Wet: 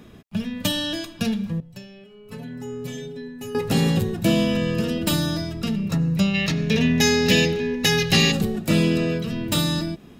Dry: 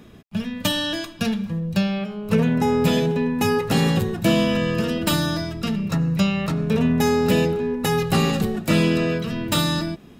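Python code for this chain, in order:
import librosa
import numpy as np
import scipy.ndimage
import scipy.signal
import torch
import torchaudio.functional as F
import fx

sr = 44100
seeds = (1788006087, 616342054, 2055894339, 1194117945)

y = fx.dynamic_eq(x, sr, hz=1200.0, q=0.76, threshold_db=-39.0, ratio=4.0, max_db=-6)
y = fx.stiff_resonator(y, sr, f0_hz=130.0, decay_s=0.31, stiffness=0.008, at=(1.6, 3.55))
y = fx.spec_box(y, sr, start_s=6.35, length_s=1.97, low_hz=1600.0, high_hz=6900.0, gain_db=11)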